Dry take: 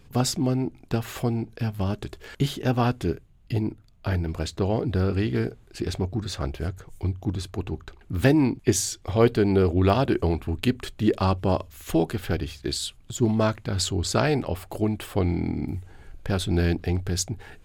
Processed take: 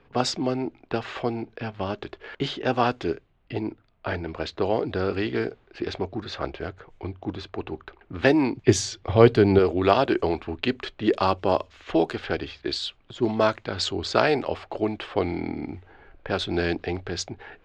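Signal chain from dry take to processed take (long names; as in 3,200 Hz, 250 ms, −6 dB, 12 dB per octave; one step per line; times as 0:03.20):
three-way crossover with the lows and the highs turned down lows −14 dB, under 310 Hz, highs −24 dB, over 6,400 Hz
low-pass that shuts in the quiet parts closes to 2,100 Hz, open at −21 dBFS
0:08.56–0:09.59: parametric band 110 Hz +12.5 dB 1.9 octaves
level +4 dB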